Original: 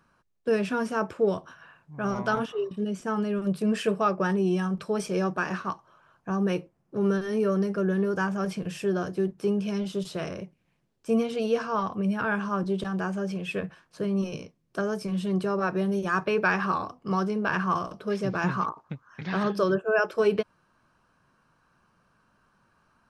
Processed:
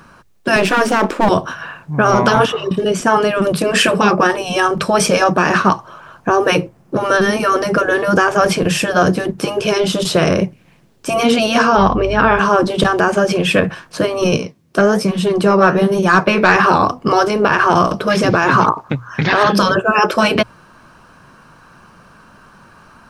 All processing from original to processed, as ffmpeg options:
ffmpeg -i in.wav -filter_complex "[0:a]asettb=1/sr,asplit=3[link_01][link_02][link_03];[link_01]atrim=end=0.564[link_04];[link_02]atrim=start=0.56:end=1.29,asetpts=PTS-STARTPTS,afade=type=in:duration=0.004:curve=qsin,afade=type=out:start_time=0.726:duration=0.004:curve=qsin,aeval=exprs='if(lt(val(0),0),0.251*val(0),val(0))':channel_layout=same,lowshelf=frequency=170:width_type=q:width=3:gain=-11.5[link_05];[link_03]atrim=start=1.286[link_06];[link_04][link_05]acrossfade=duration=0.004:curve1=hsin:curve2=qsin[link_07];[link_07][link_06]acrossfade=duration=0.004:curve1=qsin:curve2=hsin,asettb=1/sr,asplit=3[link_08][link_09][link_10];[link_08]atrim=end=11.774[link_11];[link_09]atrim=start=11.77:end=12.39,asetpts=PTS-STARTPTS,afade=type=in:duration=0.004:curve=qsin,afade=type=out:start_time=0.616:duration=0.004:curve=qsin,lowpass=frequency=5600:width=0.5412,lowpass=frequency=5600:width=1.3066,aeval=exprs='val(0)+0.00631*(sin(2*PI*50*n/s)+sin(2*PI*2*50*n/s)/2+sin(2*PI*3*50*n/s)/3+sin(2*PI*4*50*n/s)/4+sin(2*PI*5*50*n/s)/5)':channel_layout=same[link_12];[link_10]atrim=start=12.386[link_13];[link_11][link_12]acrossfade=duration=0.004:curve1=hsin:curve2=qsin[link_14];[link_14][link_13]acrossfade=duration=0.004:curve1=qsin:curve2=hsin,asettb=1/sr,asplit=3[link_15][link_16][link_17];[link_15]atrim=end=14.374[link_18];[link_16]atrim=start=14.37:end=16.56,asetpts=PTS-STARTPTS,afade=type=in:duration=0.004:curve=qsin,afade=type=out:start_time=2.186:duration=0.004:curve=qsin,highpass=79,flanger=delay=4.3:depth=9.5:regen=68:speed=1.2:shape=sinusoidal,aeval=exprs='(tanh(11.2*val(0)+0.05)-tanh(0.05))/11.2':channel_layout=same[link_19];[link_17]atrim=start=16.556[link_20];[link_18][link_19]acrossfade=duration=0.004:curve1=hsin:curve2=qsin[link_21];[link_21][link_20]acrossfade=duration=0.004:curve1=qsin:curve2=hsin,afftfilt=real='re*lt(hypot(re,im),0.251)':imag='im*lt(hypot(re,im),0.251)':win_size=1024:overlap=0.75,bandreject=frequency=60:width_type=h:width=6,bandreject=frequency=120:width_type=h:width=6,alimiter=level_in=23dB:limit=-1dB:release=50:level=0:latency=1,volume=-1dB" out.wav

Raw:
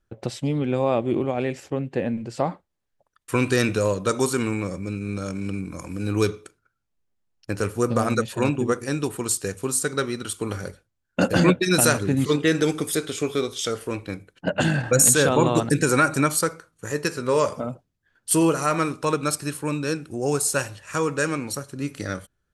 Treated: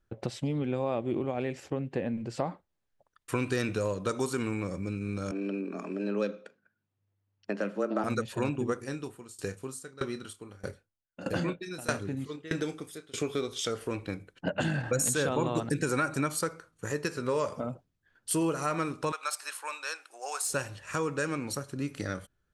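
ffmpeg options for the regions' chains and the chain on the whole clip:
ffmpeg -i in.wav -filter_complex "[0:a]asettb=1/sr,asplit=3[link_01][link_02][link_03];[link_01]atrim=end=5.314[link_04];[link_02]atrim=start=5.31:end=8.04,asetpts=PTS-STARTPTS,afade=type=in:duration=0.004:curve=qsin,afade=type=out:start_time=2.726:duration=0.004:curve=qsin,afreqshift=99,highpass=120,lowpass=3700[link_05];[link_03]atrim=start=8.036[link_06];[link_04][link_05]acrossfade=duration=0.004:curve1=hsin:curve2=qsin[link_07];[link_07][link_06]acrossfade=duration=0.004:curve1=qsin:curve2=hsin,asettb=1/sr,asplit=3[link_08][link_09][link_10];[link_08]atrim=end=8.764[link_11];[link_09]atrim=start=8.76:end=13.18,asetpts=PTS-STARTPTS,afade=type=in:duration=0.004:curve=qsin,afade=type=out:start_time=4.416:duration=0.004:curve=qsin,asplit=2[link_12][link_13];[link_13]adelay=30,volume=-11dB[link_14];[link_12][link_14]amix=inputs=2:normalize=0,atrim=end_sample=194922,aeval=exprs='val(0)*pow(10,-24*if(lt(mod(1.6*n/s,1),2*abs(1.6)/1000),1-mod(1.6*n/s,1)/(2*abs(1.6)/1000),(mod(1.6*n/s,1)-2*abs(1.6)/1000)/(1-2*abs(1.6)/1000))/20)':channel_layout=same[link_15];[link_10]atrim=start=13.176[link_16];[link_11][link_15]acrossfade=duration=0.004:curve1=hsin:curve2=qsin[link_17];[link_17][link_16]acrossfade=duration=0.004:curve1=qsin:curve2=hsin,asettb=1/sr,asplit=3[link_18][link_19][link_20];[link_18]atrim=end=19.124[link_21];[link_19]atrim=start=19.12:end=20.5,asetpts=PTS-STARTPTS,afade=type=in:duration=0.004:curve=qsin,afade=type=out:start_time=1.376:duration=0.004:curve=qsin,highpass=frequency=750:width=0.5412,highpass=frequency=750:width=1.3066,asoftclip=type=hard:threshold=-17dB[link_22];[link_20]atrim=start=20.496[link_23];[link_21][link_22]acrossfade=duration=0.004:curve1=hsin:curve2=qsin[link_24];[link_24][link_23]acrossfade=duration=0.004:curve1=qsin:curve2=hsin,highshelf=frequency=7100:gain=-6,acompressor=threshold=-30dB:ratio=2,volume=-1.5dB" out.wav

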